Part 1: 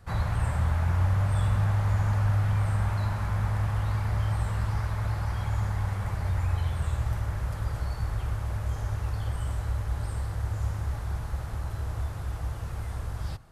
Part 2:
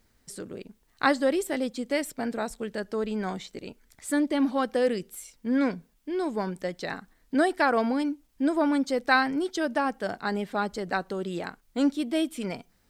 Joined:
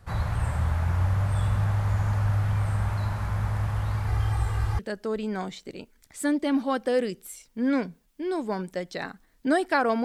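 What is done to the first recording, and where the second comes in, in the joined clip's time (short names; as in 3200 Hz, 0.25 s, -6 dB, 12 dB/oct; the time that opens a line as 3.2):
part 1
4.07–4.79 comb 2.5 ms, depth 61%
4.79 switch to part 2 from 2.67 s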